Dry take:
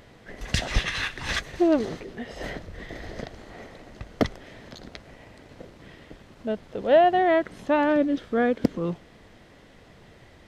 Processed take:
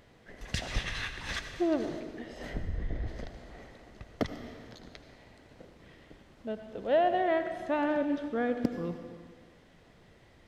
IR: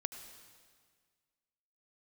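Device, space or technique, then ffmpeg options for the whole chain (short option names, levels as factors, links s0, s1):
stairwell: -filter_complex "[0:a]asplit=3[s0][s1][s2];[s0]afade=t=out:st=2.53:d=0.02[s3];[s1]aemphasis=mode=reproduction:type=riaa,afade=t=in:st=2.53:d=0.02,afade=t=out:st=3.06:d=0.02[s4];[s2]afade=t=in:st=3.06:d=0.02[s5];[s3][s4][s5]amix=inputs=3:normalize=0[s6];[1:a]atrim=start_sample=2205[s7];[s6][s7]afir=irnorm=-1:irlink=0,volume=0.447"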